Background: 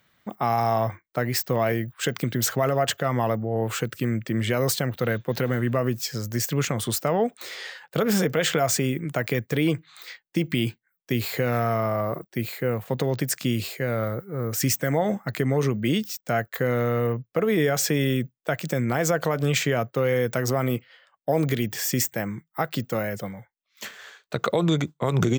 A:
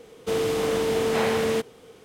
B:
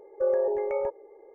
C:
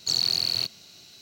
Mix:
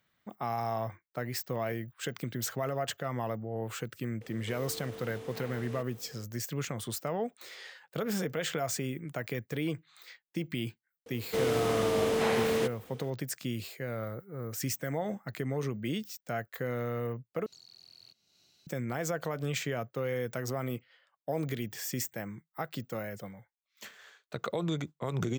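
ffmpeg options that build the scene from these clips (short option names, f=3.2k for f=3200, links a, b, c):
-filter_complex "[1:a]asplit=2[a][b];[0:a]volume=-10.5dB[c];[a]acompressor=threshold=-36dB:ratio=6:attack=3.2:release=140:knee=1:detection=peak[d];[3:a]acompressor=threshold=-30dB:ratio=12:attack=0.18:release=660:knee=1:detection=peak[e];[c]asplit=2[f][g];[f]atrim=end=17.464[h];[e]atrim=end=1.21,asetpts=PTS-STARTPTS,volume=-16.5dB[i];[g]atrim=start=18.666[j];[d]atrim=end=2.04,asetpts=PTS-STARTPTS,volume=-6.5dB,afade=t=in:d=0.004:c=hsin,afade=t=out:st=2.036:d=0.004:c=hsin,adelay=185661S[k];[b]atrim=end=2.04,asetpts=PTS-STARTPTS,volume=-4.5dB,afade=t=in:d=0.004:c=hsin,afade=t=out:st=2.036:d=0.004:c=hsin,adelay=487746S[l];[h][i]acrossfade=d=0.004:c1=hsin:c2=hsin[m];[m][j]acrossfade=d=0.004:c1=hsin:c2=hsin[n];[n][k][l]amix=inputs=3:normalize=0"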